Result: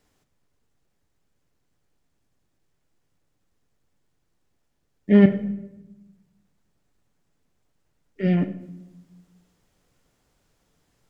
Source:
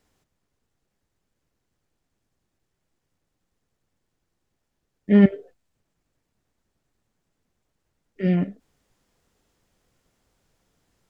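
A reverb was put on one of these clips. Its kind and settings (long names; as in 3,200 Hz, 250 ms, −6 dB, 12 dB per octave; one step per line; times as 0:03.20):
rectangular room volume 430 cubic metres, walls mixed, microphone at 0.35 metres
level +1 dB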